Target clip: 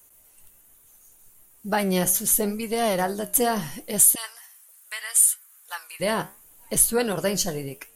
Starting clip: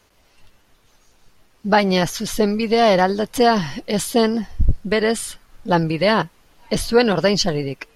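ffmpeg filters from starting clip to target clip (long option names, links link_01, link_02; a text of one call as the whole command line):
ffmpeg -i in.wav -filter_complex "[0:a]flanger=delay=7.4:depth=9.2:regen=74:speed=0.74:shape=sinusoidal,asettb=1/sr,asplit=3[link_01][link_02][link_03];[link_01]atrim=end=4.154[link_04];[link_02]atrim=start=4.15:end=6,asetpts=PTS-STARTPTS,afade=type=in:duration=0.004:curve=qsin,afade=type=out:start_time=1.846:duration=0.004:curve=qsin,highpass=frequency=1100:width=0.5412,highpass=frequency=1100:width=1.3066[link_05];[link_03]atrim=start=5.996[link_06];[link_04][link_05]acrossfade=duration=0.004:curve1=hsin:curve2=qsin[link_07];[link_07][link_06]acrossfade=duration=0.004:curve1=qsin:curve2=hsin,aexciter=amount=11.1:drive=7.3:freq=7300,volume=-4dB" out.wav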